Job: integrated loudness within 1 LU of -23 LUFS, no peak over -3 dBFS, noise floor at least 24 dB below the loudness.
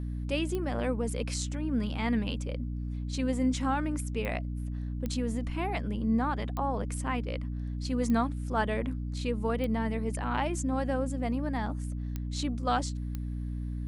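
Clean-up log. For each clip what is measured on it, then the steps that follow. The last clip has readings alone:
clicks found 8; hum 60 Hz; highest harmonic 300 Hz; hum level -32 dBFS; loudness -32.0 LUFS; peak level -15.5 dBFS; loudness target -23.0 LUFS
-> de-click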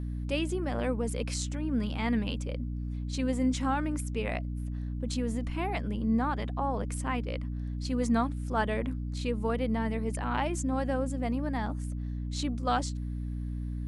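clicks found 0; hum 60 Hz; highest harmonic 300 Hz; hum level -32 dBFS
-> de-hum 60 Hz, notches 5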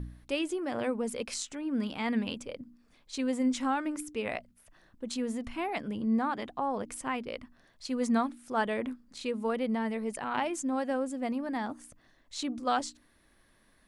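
hum not found; loudness -33.0 LUFS; peak level -17.0 dBFS; loudness target -23.0 LUFS
-> trim +10 dB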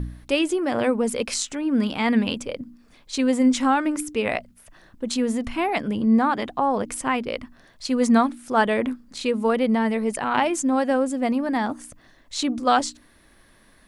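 loudness -23.0 LUFS; peak level -7.0 dBFS; noise floor -56 dBFS

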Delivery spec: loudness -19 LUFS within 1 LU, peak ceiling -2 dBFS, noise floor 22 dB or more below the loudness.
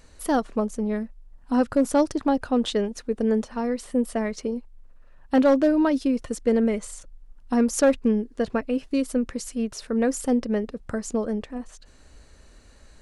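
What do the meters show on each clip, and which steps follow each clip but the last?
clipped samples 0.3%; clipping level -12.0 dBFS; loudness -24.5 LUFS; peak level -12.0 dBFS; loudness target -19.0 LUFS
-> clip repair -12 dBFS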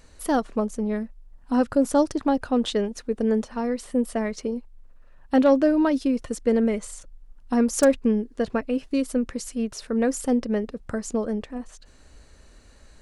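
clipped samples 0.0%; loudness -24.5 LUFS; peak level -3.0 dBFS; loudness target -19.0 LUFS
-> trim +5.5 dB; peak limiter -2 dBFS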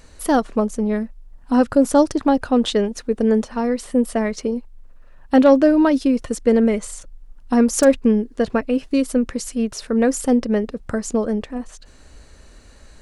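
loudness -19.0 LUFS; peak level -2.0 dBFS; noise floor -46 dBFS

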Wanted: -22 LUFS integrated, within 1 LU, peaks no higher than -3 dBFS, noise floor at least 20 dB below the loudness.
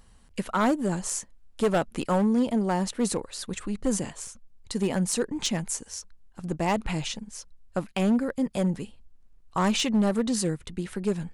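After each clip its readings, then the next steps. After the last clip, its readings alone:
clipped samples 1.4%; clipping level -18.0 dBFS; dropouts 1; longest dropout 3.0 ms; loudness -27.5 LUFS; peak level -18.0 dBFS; loudness target -22.0 LUFS
-> clip repair -18 dBFS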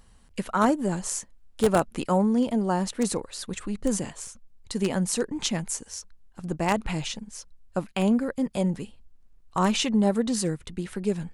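clipped samples 0.0%; dropouts 1; longest dropout 3.0 ms
-> interpolate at 4.27 s, 3 ms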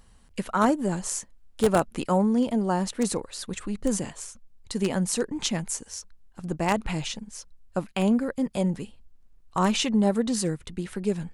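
dropouts 0; loudness -27.0 LUFS; peak level -9.0 dBFS; loudness target -22.0 LUFS
-> trim +5 dB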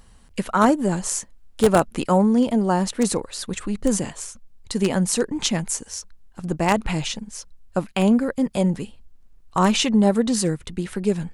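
loudness -22.0 LUFS; peak level -4.0 dBFS; noise floor -50 dBFS

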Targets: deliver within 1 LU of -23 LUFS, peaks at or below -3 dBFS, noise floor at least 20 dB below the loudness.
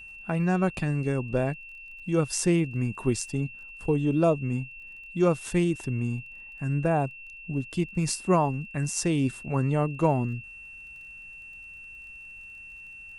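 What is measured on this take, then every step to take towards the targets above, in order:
tick rate 25 per s; steady tone 2.7 kHz; tone level -42 dBFS; loudness -27.5 LUFS; peak level -10.0 dBFS; loudness target -23.0 LUFS
-> de-click; band-stop 2.7 kHz, Q 30; trim +4.5 dB

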